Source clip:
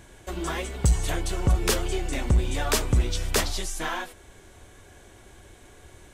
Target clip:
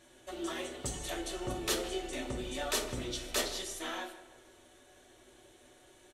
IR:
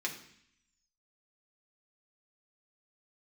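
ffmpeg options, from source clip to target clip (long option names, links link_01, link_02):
-filter_complex "[0:a]asplit=2[link_01][link_02];[link_02]adelay=161,lowpass=frequency=2700:poles=1,volume=-14dB,asplit=2[link_03][link_04];[link_04]adelay=161,lowpass=frequency=2700:poles=1,volume=0.49,asplit=2[link_05][link_06];[link_06]adelay=161,lowpass=frequency=2700:poles=1,volume=0.49,asplit=2[link_07][link_08];[link_08]adelay=161,lowpass=frequency=2700:poles=1,volume=0.49,asplit=2[link_09][link_10];[link_10]adelay=161,lowpass=frequency=2700:poles=1,volume=0.49[link_11];[link_01][link_03][link_05][link_07][link_09][link_11]amix=inputs=6:normalize=0[link_12];[1:a]atrim=start_sample=2205,asetrate=74970,aresample=44100[link_13];[link_12][link_13]afir=irnorm=-1:irlink=0,volume=-5.5dB"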